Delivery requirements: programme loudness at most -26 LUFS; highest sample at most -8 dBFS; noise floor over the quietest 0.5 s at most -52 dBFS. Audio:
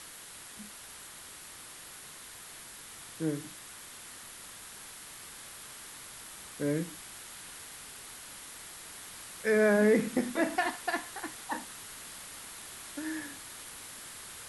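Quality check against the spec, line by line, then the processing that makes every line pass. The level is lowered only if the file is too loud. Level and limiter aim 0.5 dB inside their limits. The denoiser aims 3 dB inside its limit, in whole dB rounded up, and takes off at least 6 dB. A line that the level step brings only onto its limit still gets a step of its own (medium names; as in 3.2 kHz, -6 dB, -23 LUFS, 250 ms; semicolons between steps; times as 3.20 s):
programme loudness -36.0 LUFS: pass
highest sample -15.5 dBFS: pass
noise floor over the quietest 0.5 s -48 dBFS: fail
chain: noise reduction 7 dB, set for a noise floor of -48 dBFS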